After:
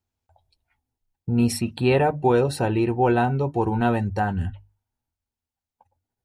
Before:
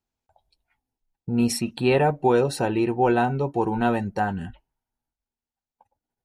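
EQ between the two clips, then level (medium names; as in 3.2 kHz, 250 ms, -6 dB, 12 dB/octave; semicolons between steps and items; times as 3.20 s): hum notches 50/100/150 Hz; dynamic bell 6.3 kHz, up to -5 dB, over -53 dBFS, Q 3.3; peaking EQ 89 Hz +14 dB 0.67 oct; 0.0 dB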